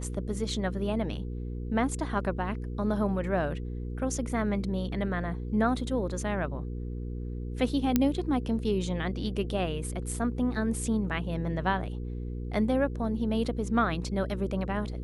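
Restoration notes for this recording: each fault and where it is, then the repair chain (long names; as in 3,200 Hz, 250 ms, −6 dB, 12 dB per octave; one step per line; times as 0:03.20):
mains hum 60 Hz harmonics 8 −35 dBFS
0:07.96: click −9 dBFS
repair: click removal
hum removal 60 Hz, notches 8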